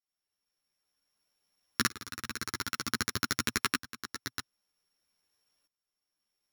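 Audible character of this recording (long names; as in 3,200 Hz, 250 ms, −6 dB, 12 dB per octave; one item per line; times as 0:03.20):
a buzz of ramps at a fixed pitch in blocks of 8 samples
tremolo saw up 0.53 Hz, depth 90%
a shimmering, thickened sound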